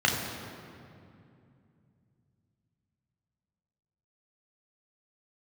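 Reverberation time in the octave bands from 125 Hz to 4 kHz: 4.3, 3.7, 2.7, 2.4, 2.1, 1.6 s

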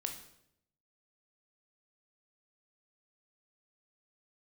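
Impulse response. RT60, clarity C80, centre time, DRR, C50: 0.75 s, 11.5 dB, 19 ms, 4.0 dB, 8.0 dB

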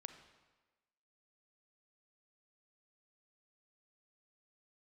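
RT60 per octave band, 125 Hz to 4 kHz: 1.1, 1.2, 1.3, 1.2, 1.2, 1.1 s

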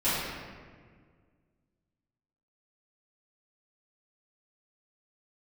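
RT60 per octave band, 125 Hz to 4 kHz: 2.3, 2.3, 1.9, 1.6, 1.5, 1.0 s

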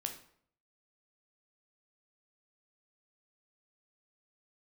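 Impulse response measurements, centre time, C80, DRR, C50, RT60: 14 ms, 13.5 dB, 4.0 dB, 9.5 dB, 0.60 s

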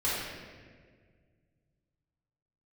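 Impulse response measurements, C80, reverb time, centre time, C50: 0.5 dB, 1.7 s, 0.107 s, -2.5 dB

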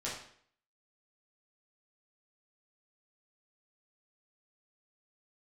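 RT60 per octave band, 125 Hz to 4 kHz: 0.55, 0.60, 0.60, 0.55, 0.60, 0.55 s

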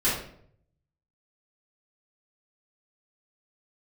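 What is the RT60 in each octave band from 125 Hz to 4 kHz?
1.1, 0.75, 0.70, 0.55, 0.50, 0.45 s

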